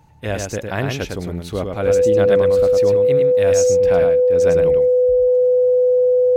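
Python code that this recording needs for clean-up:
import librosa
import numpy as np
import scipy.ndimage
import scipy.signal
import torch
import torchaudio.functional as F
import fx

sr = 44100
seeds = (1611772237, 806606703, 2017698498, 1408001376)

y = fx.notch(x, sr, hz=500.0, q=30.0)
y = fx.fix_echo_inverse(y, sr, delay_ms=105, level_db=-4.5)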